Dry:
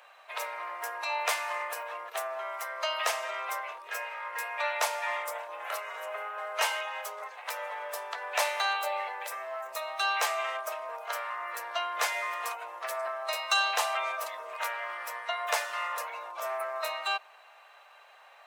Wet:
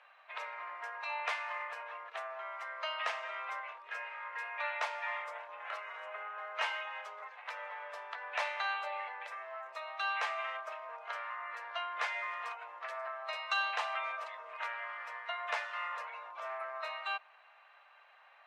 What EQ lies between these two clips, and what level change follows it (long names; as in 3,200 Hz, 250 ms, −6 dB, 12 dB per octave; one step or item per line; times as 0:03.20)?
low-pass filter 2,300 Hz 12 dB per octave
tilt shelving filter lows −7 dB, about 870 Hz
−7.0 dB